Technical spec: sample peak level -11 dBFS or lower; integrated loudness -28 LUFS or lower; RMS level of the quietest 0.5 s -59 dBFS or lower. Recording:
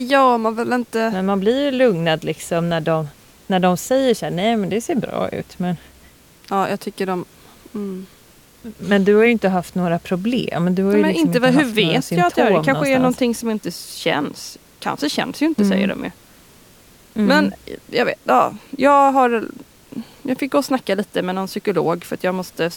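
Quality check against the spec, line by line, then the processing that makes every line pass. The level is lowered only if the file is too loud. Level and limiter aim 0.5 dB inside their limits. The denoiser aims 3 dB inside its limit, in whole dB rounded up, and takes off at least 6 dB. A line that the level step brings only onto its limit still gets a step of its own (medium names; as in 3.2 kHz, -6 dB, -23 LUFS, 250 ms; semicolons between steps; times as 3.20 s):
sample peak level -3.0 dBFS: fail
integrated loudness -18.5 LUFS: fail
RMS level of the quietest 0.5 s -49 dBFS: fail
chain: noise reduction 6 dB, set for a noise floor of -49 dBFS; trim -10 dB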